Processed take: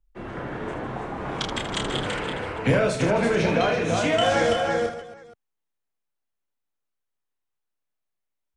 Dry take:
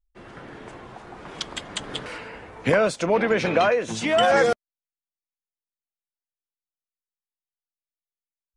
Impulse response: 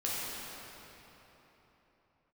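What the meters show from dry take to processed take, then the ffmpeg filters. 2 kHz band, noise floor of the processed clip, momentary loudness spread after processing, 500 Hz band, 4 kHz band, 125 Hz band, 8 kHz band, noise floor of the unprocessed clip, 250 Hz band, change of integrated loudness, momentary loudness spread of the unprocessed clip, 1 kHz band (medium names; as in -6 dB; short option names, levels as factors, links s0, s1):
-0.5 dB, -81 dBFS, 12 LU, -1.0 dB, +1.5 dB, +6.5 dB, +0.5 dB, under -85 dBFS, +2.5 dB, -2.0 dB, 22 LU, -1.0 dB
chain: -filter_complex "[0:a]highshelf=f=2700:g=-11,asplit=2[s0][s1];[s1]aecho=0:1:332:0.473[s2];[s0][s2]amix=inputs=2:normalize=0,acrossover=split=130|3000[s3][s4][s5];[s4]acompressor=threshold=0.0178:ratio=2.5[s6];[s3][s6][s5]amix=inputs=3:normalize=0,equalizer=f=4800:w=4.4:g=-3,asplit=2[s7][s8];[s8]aecho=0:1:30|78|154.8|277.7|474.3:0.631|0.398|0.251|0.158|0.1[s9];[s7][s9]amix=inputs=2:normalize=0,volume=2.37"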